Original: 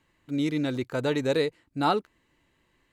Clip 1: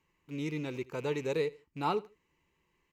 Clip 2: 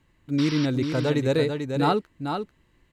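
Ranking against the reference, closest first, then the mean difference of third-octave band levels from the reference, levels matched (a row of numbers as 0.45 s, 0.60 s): 1, 2; 3.0 dB, 4.5 dB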